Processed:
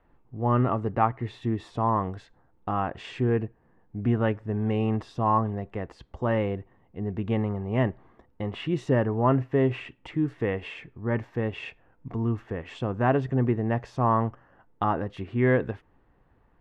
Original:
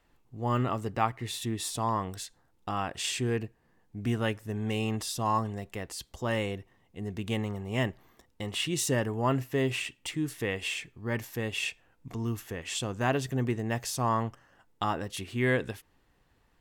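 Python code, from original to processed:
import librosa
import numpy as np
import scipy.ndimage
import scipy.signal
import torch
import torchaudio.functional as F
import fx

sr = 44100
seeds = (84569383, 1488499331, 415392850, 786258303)

y = scipy.signal.sosfilt(scipy.signal.butter(2, 1400.0, 'lowpass', fs=sr, output='sos'), x)
y = y * 10.0 ** (5.5 / 20.0)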